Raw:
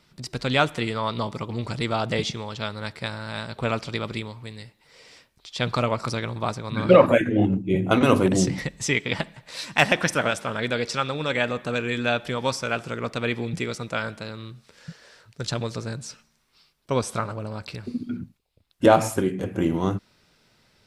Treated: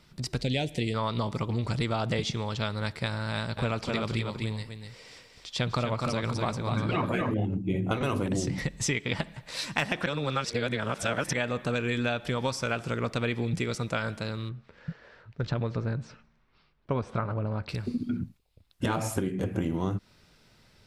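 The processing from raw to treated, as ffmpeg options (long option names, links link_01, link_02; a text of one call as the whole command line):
ffmpeg -i in.wav -filter_complex "[0:a]asettb=1/sr,asplit=3[link_01][link_02][link_03];[link_01]atrim=end=0.414[link_04];[link_02]atrim=start=0.41:end=0.94,asetpts=PTS-STARTPTS,afade=type=in:duration=0.004:curve=qsin,afade=type=out:start_time=0.526:duration=0.004:curve=qsin,asuperstop=centerf=1200:order=4:qfactor=0.81[link_05];[link_03]atrim=start=0.936[link_06];[link_04][link_05]acrossfade=duration=0.004:curve1=hsin:curve2=qsin[link_07];[link_07][link_06]acrossfade=duration=0.004:curve1=qsin:curve2=hsin,asettb=1/sr,asplit=3[link_08][link_09][link_10];[link_08]atrim=end=3.324[link_11];[link_09]atrim=start=3.32:end=7.34,asetpts=PTS-STARTPTS,afade=type=in:duration=0.004:curve=qsin,afade=type=out:start_time=4.016:duration=0.004:curve=qsin,aecho=1:1:249:0.501,atrim=end_sample=177282[link_12];[link_10]atrim=start=7.336[link_13];[link_11][link_12]acrossfade=duration=0.004:curve1=hsin:curve2=qsin[link_14];[link_14][link_13]acrossfade=duration=0.004:curve1=qsin:curve2=hsin,asettb=1/sr,asplit=3[link_15][link_16][link_17];[link_15]atrim=end=14.494[link_18];[link_16]atrim=start=14.49:end=17.69,asetpts=PTS-STARTPTS,afade=type=in:duration=0.004:curve=qsin,afade=type=out:start_time=3.196:duration=0.004:curve=qsin,lowpass=2200[link_19];[link_17]atrim=start=17.686[link_20];[link_18][link_19]acrossfade=duration=0.004:curve1=hsin:curve2=qsin[link_21];[link_21][link_20]acrossfade=duration=0.004:curve1=qsin:curve2=hsin,asplit=3[link_22][link_23][link_24];[link_22]atrim=end=10.062[link_25];[link_23]atrim=start=10.058:end=11.332,asetpts=PTS-STARTPTS,areverse[link_26];[link_24]atrim=start=11.328[link_27];[link_25][link_26]acrossfade=duration=0.004:curve1=hsin:curve2=hsin[link_28];[link_28][link_27]acrossfade=duration=0.004:curve1=hsin:curve2=hsin,afftfilt=real='re*lt(hypot(re,im),0.891)':imag='im*lt(hypot(re,im),0.891)':win_size=1024:overlap=0.75,lowshelf=frequency=120:gain=8,acompressor=threshold=-25dB:ratio=6" out.wav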